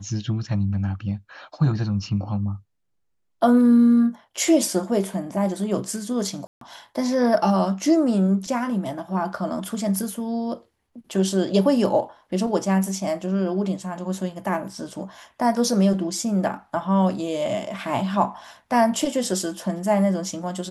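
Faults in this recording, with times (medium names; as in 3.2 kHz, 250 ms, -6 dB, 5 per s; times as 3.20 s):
6.47–6.61 s: dropout 143 ms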